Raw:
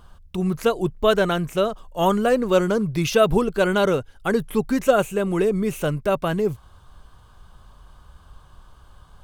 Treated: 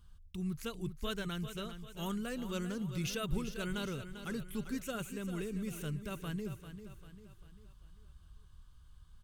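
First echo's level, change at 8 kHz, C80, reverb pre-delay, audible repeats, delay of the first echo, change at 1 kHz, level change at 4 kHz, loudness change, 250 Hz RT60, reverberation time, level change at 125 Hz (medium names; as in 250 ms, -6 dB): -10.5 dB, -11.0 dB, no reverb, no reverb, 4, 395 ms, -22.5 dB, -13.0 dB, -18.5 dB, no reverb, no reverb, -12.5 dB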